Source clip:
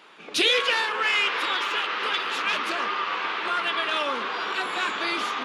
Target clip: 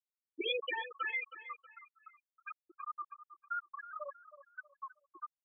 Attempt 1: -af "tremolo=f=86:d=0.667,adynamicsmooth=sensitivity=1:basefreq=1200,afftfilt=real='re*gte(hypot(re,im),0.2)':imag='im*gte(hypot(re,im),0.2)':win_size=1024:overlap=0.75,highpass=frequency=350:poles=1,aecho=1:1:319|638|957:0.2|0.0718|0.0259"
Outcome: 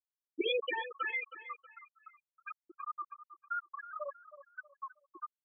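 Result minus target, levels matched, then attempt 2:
250 Hz band +4.5 dB
-af "tremolo=f=86:d=0.667,adynamicsmooth=sensitivity=1:basefreq=1200,afftfilt=real='re*gte(hypot(re,im),0.2)':imag='im*gte(hypot(re,im),0.2)':win_size=1024:overlap=0.75,highpass=frequency=910:poles=1,aecho=1:1:319|638|957:0.2|0.0718|0.0259"

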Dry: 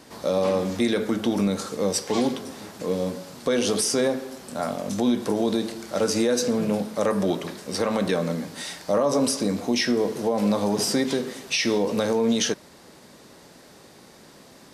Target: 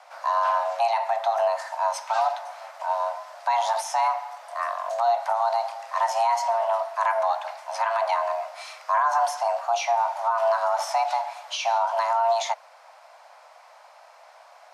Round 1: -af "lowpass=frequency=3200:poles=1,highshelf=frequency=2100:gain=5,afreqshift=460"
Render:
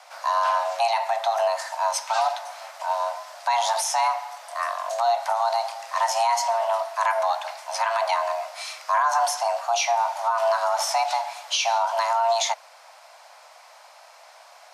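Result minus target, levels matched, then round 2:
4,000 Hz band +6.0 dB
-af "lowpass=frequency=3200:poles=1,highshelf=frequency=2100:gain=-4.5,afreqshift=460"

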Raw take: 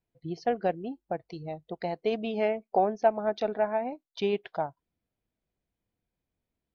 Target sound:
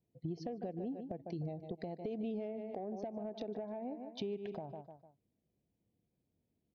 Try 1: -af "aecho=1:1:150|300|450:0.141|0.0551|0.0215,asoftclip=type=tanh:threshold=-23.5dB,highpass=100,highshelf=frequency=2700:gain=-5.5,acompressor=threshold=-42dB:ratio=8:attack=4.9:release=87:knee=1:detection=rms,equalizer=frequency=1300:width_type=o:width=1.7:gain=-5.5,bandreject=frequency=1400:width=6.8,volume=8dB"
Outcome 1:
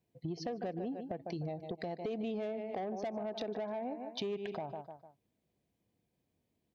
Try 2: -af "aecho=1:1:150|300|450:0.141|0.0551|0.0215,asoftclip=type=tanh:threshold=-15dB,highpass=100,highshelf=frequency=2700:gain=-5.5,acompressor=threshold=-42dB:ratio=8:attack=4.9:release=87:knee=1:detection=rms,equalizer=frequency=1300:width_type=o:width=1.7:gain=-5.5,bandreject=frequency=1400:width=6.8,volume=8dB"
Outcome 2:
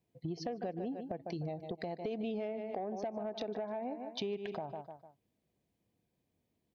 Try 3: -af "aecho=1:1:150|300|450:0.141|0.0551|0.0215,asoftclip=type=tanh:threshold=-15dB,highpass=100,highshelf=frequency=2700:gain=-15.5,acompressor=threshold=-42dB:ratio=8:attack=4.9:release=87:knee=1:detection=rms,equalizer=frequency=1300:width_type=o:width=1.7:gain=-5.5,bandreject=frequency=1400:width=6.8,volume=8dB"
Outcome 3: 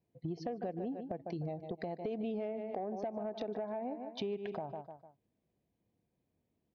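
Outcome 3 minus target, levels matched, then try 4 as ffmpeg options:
1,000 Hz band +3.0 dB
-af "aecho=1:1:150|300|450:0.141|0.0551|0.0215,asoftclip=type=tanh:threshold=-15dB,highpass=100,highshelf=frequency=2700:gain=-15.5,acompressor=threshold=-42dB:ratio=8:attack=4.9:release=87:knee=1:detection=rms,equalizer=frequency=1300:width_type=o:width=1.7:gain=-16,bandreject=frequency=1400:width=6.8,volume=8dB"

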